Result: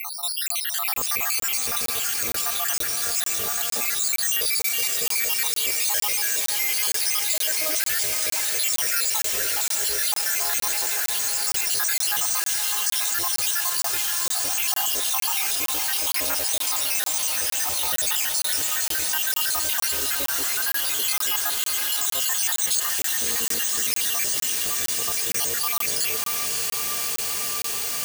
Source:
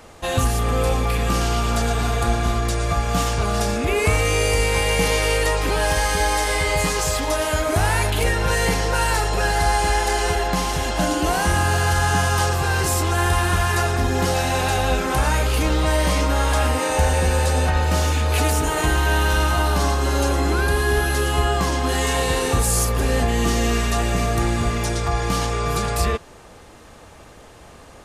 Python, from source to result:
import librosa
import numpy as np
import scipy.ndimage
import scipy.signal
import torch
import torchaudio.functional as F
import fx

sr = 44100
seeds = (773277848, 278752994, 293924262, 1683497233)

p1 = fx.spec_dropout(x, sr, seeds[0], share_pct=79)
p2 = fx.rotary(p1, sr, hz=0.65)
p3 = np.repeat(p2[::3], 3)[:len(p2)]
p4 = 10.0 ** (-32.5 / 20.0) * np.tanh(p3 / 10.0 ** (-32.5 / 20.0))
p5 = p3 + F.gain(torch.from_numpy(p4), -4.0).numpy()
p6 = np.diff(p5, prepend=0.0)
p7 = p6 + fx.echo_diffused(p6, sr, ms=594, feedback_pct=79, wet_db=-8, dry=0)
p8 = fx.buffer_crackle(p7, sr, first_s=0.48, period_s=0.46, block=1024, kind='zero')
p9 = fx.env_flatten(p8, sr, amount_pct=70)
y = F.gain(torch.from_numpy(p9), 5.5).numpy()